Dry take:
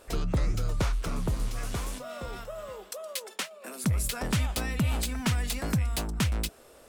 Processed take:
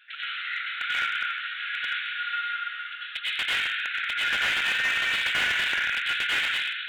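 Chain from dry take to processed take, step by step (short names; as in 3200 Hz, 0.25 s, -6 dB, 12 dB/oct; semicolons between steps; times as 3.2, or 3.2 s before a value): Chebyshev high-pass 1400 Hz, order 8; downsampling 8000 Hz; plate-style reverb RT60 2.4 s, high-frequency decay 0.65×, pre-delay 75 ms, DRR -10 dB; slew limiter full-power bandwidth 79 Hz; gain +7.5 dB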